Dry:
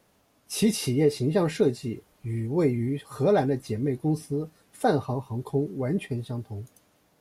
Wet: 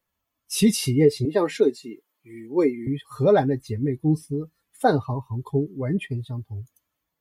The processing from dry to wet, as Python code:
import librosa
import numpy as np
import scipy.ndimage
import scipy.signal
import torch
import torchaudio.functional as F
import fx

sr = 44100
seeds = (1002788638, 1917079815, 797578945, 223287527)

y = fx.bin_expand(x, sr, power=1.5)
y = fx.highpass(y, sr, hz=250.0, slope=24, at=(1.25, 2.87))
y = F.gain(torch.from_numpy(y), 6.0).numpy()